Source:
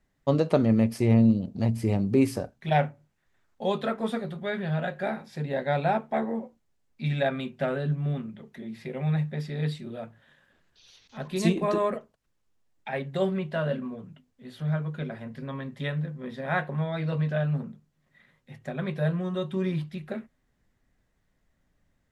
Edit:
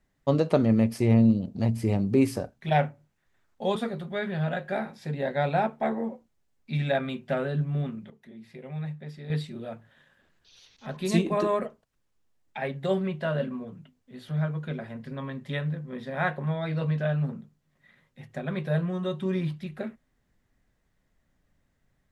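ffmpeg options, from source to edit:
-filter_complex "[0:a]asplit=4[a][b][c][d];[a]atrim=end=3.762[e];[b]atrim=start=4.068:end=8.412[f];[c]atrim=start=8.408:end=9.612,asetpts=PTS-STARTPTS,volume=-8dB[g];[d]atrim=start=9.608[h];[e][f]acrossfade=d=0.004:c1=hsin:c2=hsin[i];[i][g]acrossfade=d=0.004:c1=hsin:c2=hsin[j];[j][h]acrossfade=d=0.004:c1=hsin:c2=hsin"

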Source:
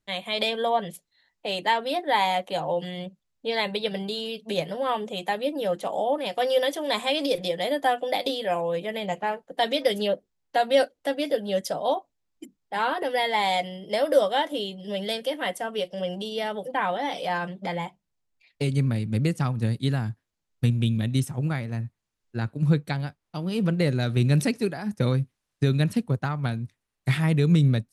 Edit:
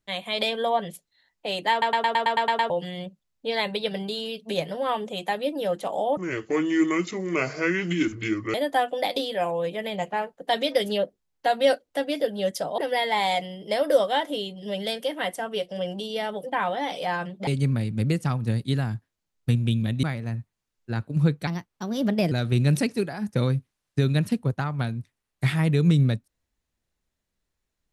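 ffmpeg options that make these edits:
-filter_complex "[0:a]asplit=17[a][b][c][d][e][f][g][h][i][j][k][l][m][n][o][p][q];[a]atrim=end=1.822[r];[b]atrim=start=1.708:end=1.822[s];[c]atrim=start=1.708:end=1.822[t];[d]atrim=start=1.708:end=1.822[u];[e]atrim=start=1.708:end=1.822[v];[f]atrim=start=1.708:end=1.822[w];[g]atrim=start=1.708:end=1.822[x];[h]atrim=start=1.708:end=1.822[y];[i]atrim=start=1.708:end=1.822[z];[j]atrim=start=2.698:end=6.174[aa];[k]atrim=start=6.17:end=7.64,asetpts=PTS-STARTPTS,asetrate=27342,aresample=44100[ab];[l]atrim=start=7.636:end=11.882[ac];[m]atrim=start=12.998:end=17.692[ad];[n]atrim=start=18.618:end=21.182[ae];[o]atrim=start=21.488:end=22.934[af];[p]atrim=start=22.93:end=23.96,asetpts=PTS-STARTPTS,asetrate=53802,aresample=44100[ag];[q]atrim=start=23.956[ah];[r][s]acrossfade=d=0.004:c1=hsin:c2=hsin[ai];[ai][t]acrossfade=d=0.004:c1=hsin:c2=hsin[aj];[aj][u]acrossfade=d=0.004:c1=hsin:c2=hsin[ak];[ak][v]acrossfade=d=0.004:c1=hsin:c2=hsin[al];[al][w]acrossfade=d=0.004:c1=hsin:c2=hsin[am];[am][x]acrossfade=d=0.004:c1=hsin:c2=hsin[an];[an][y]acrossfade=d=0.004:c1=hsin:c2=hsin[ao];[ao][z]acrossfade=d=0.004:c1=hsin:c2=hsin[ap];[ap][aa]acrossfade=d=0.004:c1=hsin:c2=hsin[aq];[aq][ab]acrossfade=d=0.004:c1=hsin:c2=hsin[ar];[ar][ac]acrossfade=d=0.004:c1=hsin:c2=hsin[as];[as][ad]acrossfade=d=0.004:c1=hsin:c2=hsin[at];[at][ae]acrossfade=d=0.004:c1=hsin:c2=hsin[au];[au][af]acrossfade=d=0.004:c1=hsin:c2=hsin[av];[av][ag]acrossfade=d=0.004:c1=hsin:c2=hsin[aw];[aw][ah]acrossfade=d=0.004:c1=hsin:c2=hsin"

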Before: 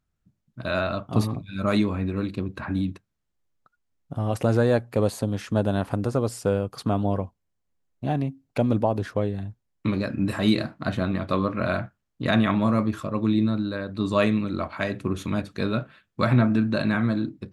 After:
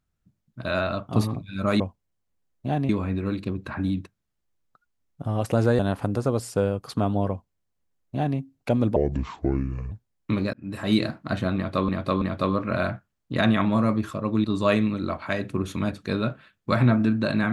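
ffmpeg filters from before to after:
-filter_complex "[0:a]asplit=10[a][b][c][d][e][f][g][h][i][j];[a]atrim=end=1.802[k];[b]atrim=start=7.178:end=8.272[l];[c]atrim=start=1.798:end=4.702[m];[d]atrim=start=5.678:end=8.854[n];[e]atrim=start=8.85:end=9.47,asetpts=PTS-STARTPTS,asetrate=28665,aresample=44100[o];[f]atrim=start=9.466:end=10.09,asetpts=PTS-STARTPTS,afade=t=out:st=0.62:d=0.004:c=hsin[p];[g]atrim=start=10.09:end=11.442,asetpts=PTS-STARTPTS,afade=t=in:d=0.44[q];[h]atrim=start=11.108:end=11.442[r];[i]atrim=start=11.108:end=13.342[s];[j]atrim=start=13.948[t];[k][l]acrossfade=d=0.004:c1=hsin:c2=hsin[u];[u][m]acrossfade=d=0.004:c1=hsin:c2=hsin[v];[v][n]acrossfade=d=0.004:c1=hsin:c2=hsin[w];[w][o]acrossfade=d=0.004:c1=hsin:c2=hsin[x];[p][q]concat=n=2:v=0:a=1[y];[x][y]acrossfade=d=0.004:c1=hsin:c2=hsin[z];[z][r]acrossfade=d=0.004:c1=hsin:c2=hsin[aa];[aa][s]acrossfade=d=0.004:c1=hsin:c2=hsin[ab];[ab][t]acrossfade=d=0.004:c1=hsin:c2=hsin"

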